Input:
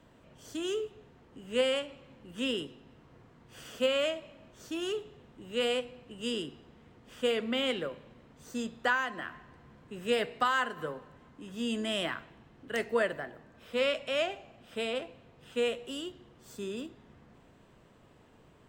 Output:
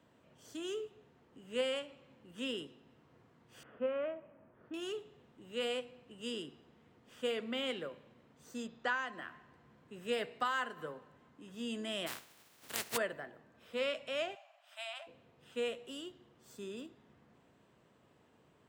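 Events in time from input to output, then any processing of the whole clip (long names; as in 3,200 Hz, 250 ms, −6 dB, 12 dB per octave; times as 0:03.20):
0:03.63–0:04.74: low-pass filter 1,800 Hz 24 dB per octave
0:08.67–0:09.11: low-pass filter 5,800 Hz → 9,800 Hz 24 dB per octave
0:12.06–0:12.96: compressing power law on the bin magnitudes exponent 0.23
0:14.35–0:15.07: linear-phase brick-wall high-pass 560 Hz
whole clip: high-pass filter 76 Hz; low-shelf EQ 110 Hz −4.5 dB; level −6.5 dB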